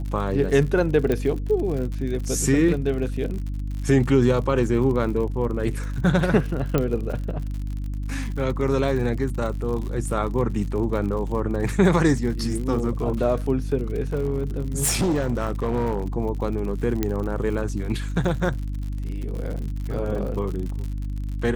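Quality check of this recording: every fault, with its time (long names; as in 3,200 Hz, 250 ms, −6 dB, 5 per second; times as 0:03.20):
surface crackle 71 per second −31 dBFS
mains hum 50 Hz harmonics 6 −28 dBFS
0:01.12: click −12 dBFS
0:06.78: click −9 dBFS
0:14.14–0:16.04: clipping −18 dBFS
0:17.03: click −9 dBFS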